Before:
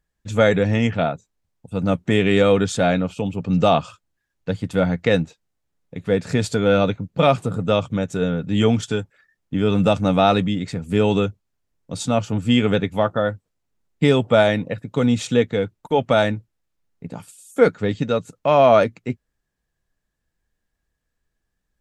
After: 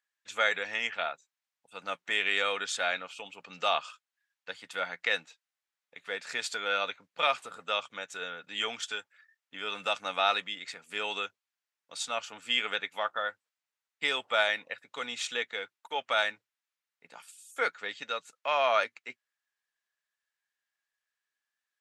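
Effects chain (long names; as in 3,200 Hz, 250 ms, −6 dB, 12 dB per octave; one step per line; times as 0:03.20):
high-pass filter 1,500 Hz 12 dB per octave
high-shelf EQ 5,500 Hz −9.5 dB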